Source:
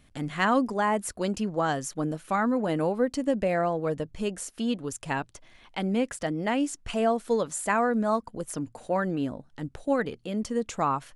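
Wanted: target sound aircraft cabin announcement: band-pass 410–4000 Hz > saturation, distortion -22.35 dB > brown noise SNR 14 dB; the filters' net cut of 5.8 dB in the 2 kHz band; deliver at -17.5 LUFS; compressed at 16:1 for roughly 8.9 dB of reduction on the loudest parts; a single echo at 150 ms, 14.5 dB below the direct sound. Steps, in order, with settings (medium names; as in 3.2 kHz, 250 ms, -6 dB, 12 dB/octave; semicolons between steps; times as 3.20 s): peaking EQ 2 kHz -7.5 dB; compression 16:1, threshold -28 dBFS; band-pass 410–4000 Hz; delay 150 ms -14.5 dB; saturation -23 dBFS; brown noise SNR 14 dB; trim +21 dB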